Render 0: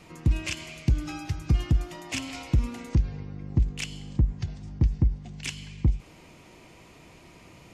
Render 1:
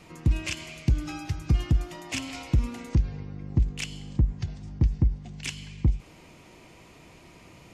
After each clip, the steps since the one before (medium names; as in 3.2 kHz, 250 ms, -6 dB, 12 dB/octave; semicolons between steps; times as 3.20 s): no audible change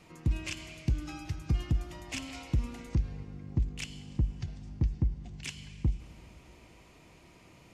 Schroeder reverb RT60 3.2 s, combs from 28 ms, DRR 16.5 dB; trim -6 dB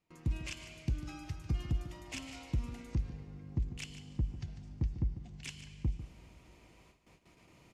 gate with hold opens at -46 dBFS; on a send: delay 147 ms -12 dB; on the sum: trim -5 dB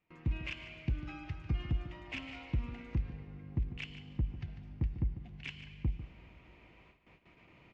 resonant low-pass 2.5 kHz, resonance Q 1.6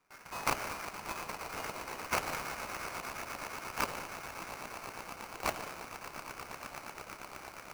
Chebyshev high-pass 2.1 kHz, order 5; echo with a slow build-up 117 ms, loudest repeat 8, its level -13.5 dB; sample-rate reducer 3.6 kHz, jitter 20%; trim +12 dB